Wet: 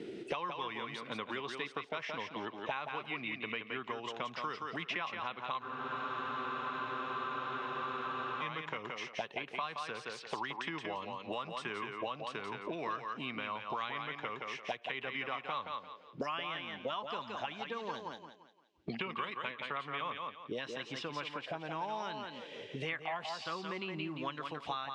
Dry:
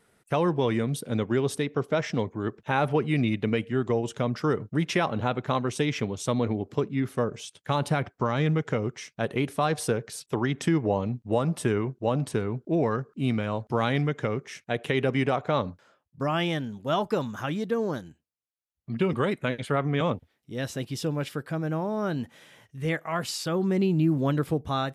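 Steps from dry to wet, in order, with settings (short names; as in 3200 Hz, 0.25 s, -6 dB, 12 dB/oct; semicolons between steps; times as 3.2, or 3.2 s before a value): EQ curve 200 Hz 0 dB, 1200 Hz -9 dB, 2700 Hz +15 dB; in parallel at -2 dB: compressor, threshold -31 dBFS, peak gain reduction 15.5 dB; on the sum: auto-wah 330–1100 Hz, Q 7, up, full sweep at -21.5 dBFS; air absorption 110 m; on a send: thinning echo 0.172 s, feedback 19%, high-pass 180 Hz, level -5.5 dB; on the sum: spectral freeze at 5.65, 2.77 s; three-band squash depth 100%; gain +5 dB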